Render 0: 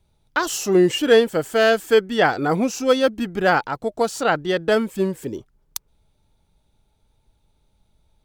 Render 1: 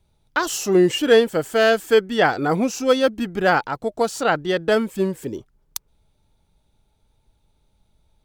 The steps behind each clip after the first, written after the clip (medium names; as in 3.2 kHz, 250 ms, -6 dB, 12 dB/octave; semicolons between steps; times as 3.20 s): no audible change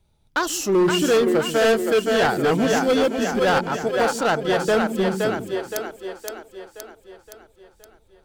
two-band feedback delay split 320 Hz, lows 133 ms, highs 519 ms, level -5 dB; hard clipper -14 dBFS, distortion -10 dB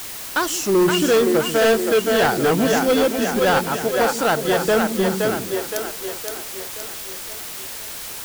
added noise white -34 dBFS; trim +1.5 dB